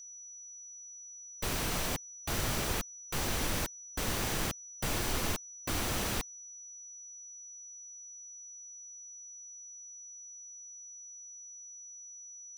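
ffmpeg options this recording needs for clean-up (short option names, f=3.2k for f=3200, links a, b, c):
-af "bandreject=f=5.9k:w=30"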